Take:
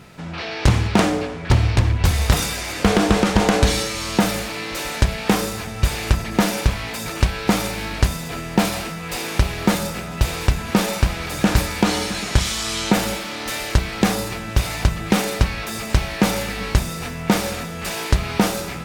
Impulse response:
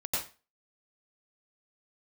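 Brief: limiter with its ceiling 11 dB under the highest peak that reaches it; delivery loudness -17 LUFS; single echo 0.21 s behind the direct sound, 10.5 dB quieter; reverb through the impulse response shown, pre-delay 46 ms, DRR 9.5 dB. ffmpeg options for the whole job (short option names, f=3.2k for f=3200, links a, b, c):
-filter_complex "[0:a]alimiter=limit=-15.5dB:level=0:latency=1,aecho=1:1:210:0.299,asplit=2[a][b];[1:a]atrim=start_sample=2205,adelay=46[c];[b][c]afir=irnorm=-1:irlink=0,volume=-15.5dB[d];[a][d]amix=inputs=2:normalize=0,volume=8dB"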